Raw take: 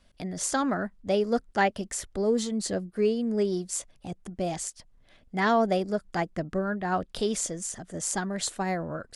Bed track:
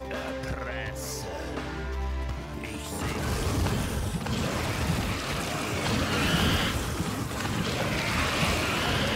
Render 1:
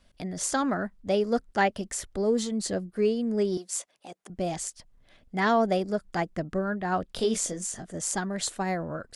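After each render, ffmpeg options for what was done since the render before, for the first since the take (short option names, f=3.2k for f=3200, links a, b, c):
-filter_complex "[0:a]asettb=1/sr,asplit=3[a][b][c];[a]atrim=end=3.574[d];[b]atrim=start=3.57:end=4.3,asetpts=PTS-STARTPTS,afade=t=in:d=0.004:c=qsin,afade=t=out:st=0.726:d=0.004:c=qsin,highpass=440[e];[c]atrim=start=4.296[f];[d][e]acrossfade=d=0.004:c1=hsin:c2=qsin[g];[g][f]acrossfade=d=0.004:c1=qsin:c2=hsin,asettb=1/sr,asplit=3[h][i][j];[h]atrim=end=7.154[k];[i]atrim=start=7.15:end=7.86,asetpts=PTS-STARTPTS,afade=t=in:d=0.004:c=qsin,afade=t=out:st=0.706:d=0.004:c=qsin,asplit=2[l][m];[m]adelay=22,volume=-6dB[n];[l][n]amix=inputs=2:normalize=0,atrim=end_sample=31311[o];[j]atrim=start=7.856[p];[k][o]acrossfade=d=0.004:c1=hsin:c2=qsin[q];[q][p]acrossfade=d=0.004:c1=qsin:c2=hsin"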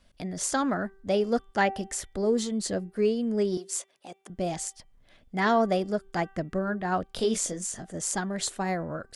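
-af "bandreject=f=388.7:t=h:w=4,bandreject=f=777.4:t=h:w=4,bandreject=f=1.1661k:t=h:w=4,bandreject=f=1.5548k:t=h:w=4,bandreject=f=1.9435k:t=h:w=4,bandreject=f=2.3322k:t=h:w=4,bandreject=f=2.7209k:t=h:w=4,bandreject=f=3.1096k:t=h:w=4,bandreject=f=3.4983k:t=h:w=4"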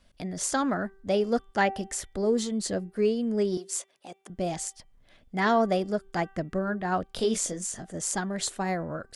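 -af anull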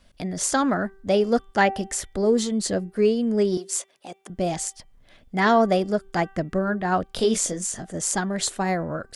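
-af "volume=5dB"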